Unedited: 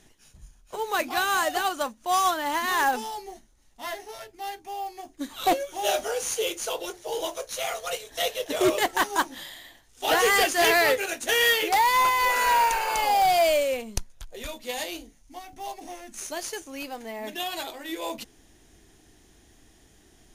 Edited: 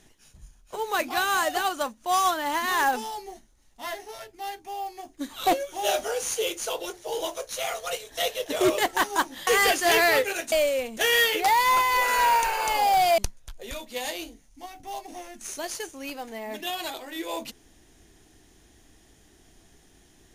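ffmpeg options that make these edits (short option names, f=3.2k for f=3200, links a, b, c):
-filter_complex "[0:a]asplit=5[a][b][c][d][e];[a]atrim=end=9.472[f];[b]atrim=start=10.198:end=11.252[g];[c]atrim=start=13.458:end=13.912[h];[d]atrim=start=11.248:end=13.462[i];[e]atrim=start=13.908[j];[f][g]acrossfade=d=0.004:c1=hsin:c2=hsin[k];[k][h]acrossfade=d=0.004:c1=hsin:c2=hsin[l];[l][i]acrossfade=d=0.004:c1=hsin:c2=hsin[m];[m][j]acrossfade=d=0.004:c1=hsin:c2=hsin"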